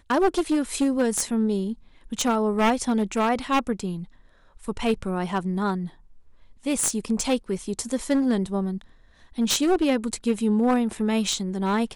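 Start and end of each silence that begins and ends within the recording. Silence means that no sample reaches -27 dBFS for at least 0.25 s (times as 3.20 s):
1.73–2.12 s
3.99–4.68 s
5.86–6.66 s
8.77–9.38 s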